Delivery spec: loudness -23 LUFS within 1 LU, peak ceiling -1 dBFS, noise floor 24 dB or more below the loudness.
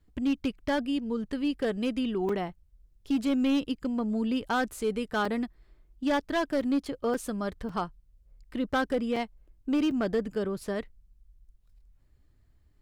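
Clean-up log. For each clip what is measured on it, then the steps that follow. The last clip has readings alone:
clipped 0.9%; flat tops at -21.0 dBFS; dropouts 7; longest dropout 4.2 ms; loudness -30.0 LUFS; peak -21.0 dBFS; loudness target -23.0 LUFS
-> clip repair -21 dBFS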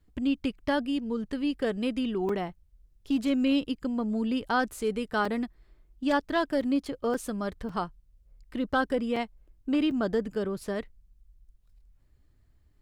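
clipped 0.0%; dropouts 7; longest dropout 4.2 ms
-> interpolate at 2.29/5.25/6.61/7.14/7.69/9.16/9.91, 4.2 ms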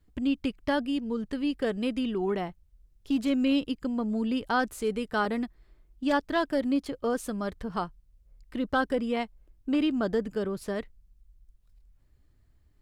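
dropouts 0; loudness -29.5 LUFS; peak -14.0 dBFS; loudness target -23.0 LUFS
-> gain +6.5 dB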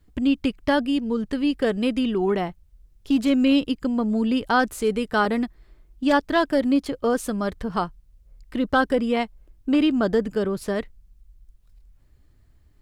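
loudness -23.0 LUFS; peak -7.5 dBFS; noise floor -57 dBFS

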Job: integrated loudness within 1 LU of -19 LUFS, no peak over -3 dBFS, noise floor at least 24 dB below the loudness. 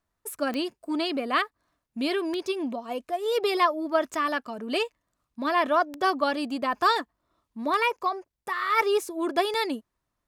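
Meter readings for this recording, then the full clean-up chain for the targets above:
clicks 6; loudness -27.0 LUFS; peak -10.0 dBFS; loudness target -19.0 LUFS
-> de-click; gain +8 dB; limiter -3 dBFS

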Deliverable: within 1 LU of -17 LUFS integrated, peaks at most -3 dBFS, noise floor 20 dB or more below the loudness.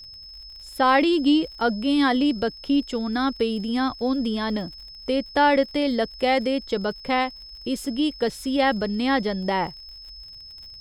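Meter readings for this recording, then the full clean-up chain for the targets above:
ticks 56/s; steady tone 5200 Hz; tone level -40 dBFS; loudness -23.0 LUFS; peak -8.0 dBFS; loudness target -17.0 LUFS
-> de-click; notch 5200 Hz, Q 30; gain +6 dB; limiter -3 dBFS

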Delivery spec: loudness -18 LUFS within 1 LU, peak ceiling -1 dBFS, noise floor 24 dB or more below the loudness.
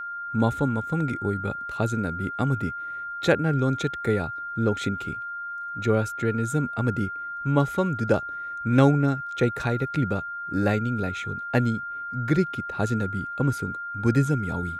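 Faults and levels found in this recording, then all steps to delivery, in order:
steady tone 1400 Hz; tone level -31 dBFS; loudness -26.0 LUFS; peak -6.5 dBFS; loudness target -18.0 LUFS
-> notch 1400 Hz, Q 30; gain +8 dB; limiter -1 dBFS

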